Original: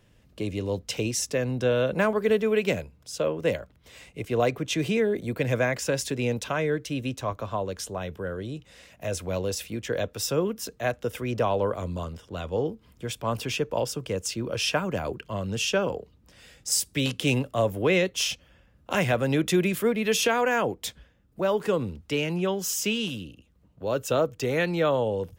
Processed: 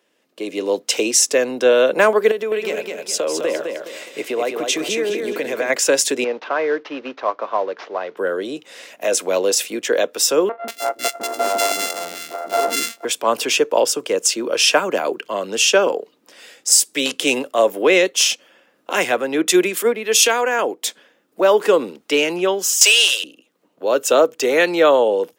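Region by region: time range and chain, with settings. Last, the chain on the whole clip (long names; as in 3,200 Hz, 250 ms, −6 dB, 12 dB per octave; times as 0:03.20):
0:02.31–0:05.70: downward compressor, threshold −29 dBFS + repeating echo 208 ms, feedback 35%, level −5 dB
0:06.24–0:08.17: variable-slope delta modulation 32 kbit/s + low-pass filter 1,200 Hz + spectral tilt +4 dB per octave
0:10.49–0:13.05: samples sorted by size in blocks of 64 samples + high-pass filter 190 Hz + three-band delay without the direct sound mids, lows, highs 150/190 ms, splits 340/1,600 Hz
0:18.90–0:20.59: parametric band 600 Hz −5 dB 0.22 octaves + upward compression, threshold −24 dBFS + multiband upward and downward expander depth 100%
0:22.81–0:23.24: Butterworth high-pass 440 Hz + mid-hump overdrive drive 15 dB, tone 6,200 Hz, clips at −17.5 dBFS + high-shelf EQ 2,500 Hz +10.5 dB
whole clip: high-pass filter 300 Hz 24 dB per octave; dynamic equaliser 7,600 Hz, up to +5 dB, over −45 dBFS, Q 1.3; automatic gain control gain up to 12.5 dB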